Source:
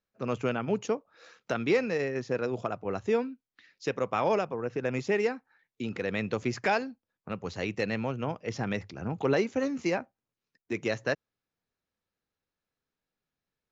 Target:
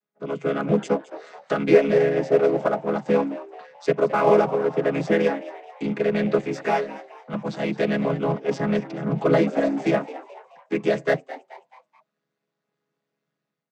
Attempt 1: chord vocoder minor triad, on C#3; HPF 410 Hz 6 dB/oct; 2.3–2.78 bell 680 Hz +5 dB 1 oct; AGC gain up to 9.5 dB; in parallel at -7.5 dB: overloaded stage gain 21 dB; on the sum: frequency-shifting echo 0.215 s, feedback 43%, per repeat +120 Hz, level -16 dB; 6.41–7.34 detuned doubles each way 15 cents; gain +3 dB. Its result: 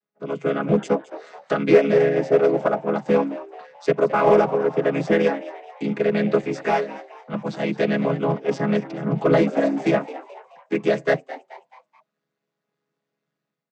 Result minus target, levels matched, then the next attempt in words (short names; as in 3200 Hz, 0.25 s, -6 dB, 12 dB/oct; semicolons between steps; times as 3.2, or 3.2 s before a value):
overloaded stage: distortion -7 dB
chord vocoder minor triad, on C#3; HPF 410 Hz 6 dB/oct; 2.3–2.78 bell 680 Hz +5 dB 1 oct; AGC gain up to 9.5 dB; in parallel at -7.5 dB: overloaded stage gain 33 dB; on the sum: frequency-shifting echo 0.215 s, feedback 43%, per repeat +120 Hz, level -16 dB; 6.41–7.34 detuned doubles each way 15 cents; gain +3 dB